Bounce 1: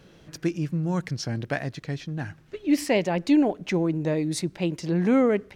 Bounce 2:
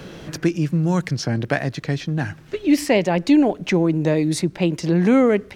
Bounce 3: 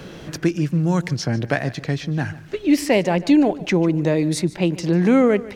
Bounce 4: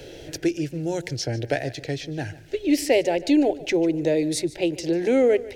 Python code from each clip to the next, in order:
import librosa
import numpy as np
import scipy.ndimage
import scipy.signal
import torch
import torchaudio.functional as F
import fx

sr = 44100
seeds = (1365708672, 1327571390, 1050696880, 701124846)

y1 = fx.band_squash(x, sr, depth_pct=40)
y1 = y1 * 10.0 ** (6.0 / 20.0)
y2 = fx.echo_feedback(y1, sr, ms=147, feedback_pct=28, wet_db=-18.5)
y3 = fx.fixed_phaser(y2, sr, hz=470.0, stages=4)